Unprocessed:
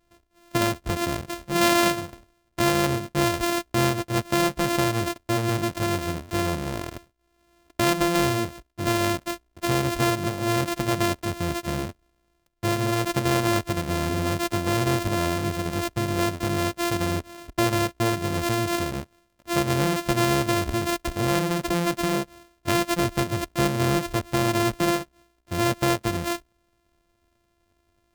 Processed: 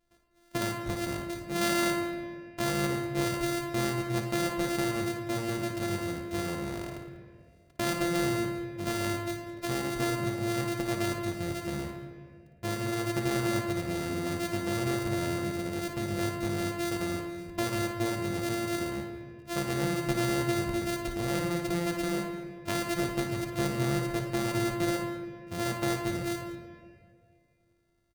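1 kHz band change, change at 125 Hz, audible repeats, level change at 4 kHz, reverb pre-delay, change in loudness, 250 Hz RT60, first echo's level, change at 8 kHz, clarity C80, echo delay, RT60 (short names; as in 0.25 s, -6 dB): -9.0 dB, -7.0 dB, 3, -8.0 dB, 3 ms, -6.5 dB, 2.4 s, -9.0 dB, -7.0 dB, 7.5 dB, 56 ms, 2.1 s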